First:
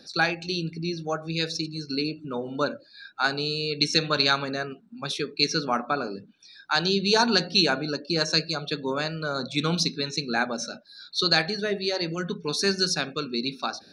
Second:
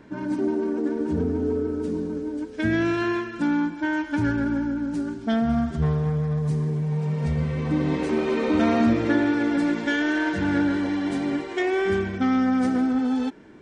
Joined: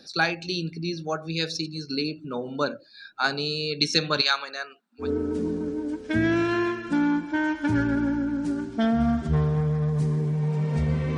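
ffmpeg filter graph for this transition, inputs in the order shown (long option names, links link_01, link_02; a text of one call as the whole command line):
ffmpeg -i cue0.wav -i cue1.wav -filter_complex "[0:a]asettb=1/sr,asplit=3[link_01][link_02][link_03];[link_01]atrim=end=4.214[link_04];[link_02]atrim=start=4.21:end=5.1,asetpts=PTS-STARTPTS,afade=type=in:duration=0.004:curve=qsin,afade=type=out:start_time=0.886:duration=0.004:curve=qsin,highpass=840[link_05];[link_03]atrim=start=5.096[link_06];[link_04][link_05]acrossfade=duration=0.004:curve1=hsin:curve2=qsin[link_07];[link_07][link_06]acrossfade=duration=0.004:curve1=qsin:curve2=hsin,apad=whole_dur=11.17,atrim=end=11.17,atrim=end=5.1,asetpts=PTS-STARTPTS[link_08];[1:a]atrim=start=1.47:end=7.66,asetpts=PTS-STARTPTS[link_09];[link_08][link_09]acrossfade=duration=0.12:curve1=tri:curve2=tri" out.wav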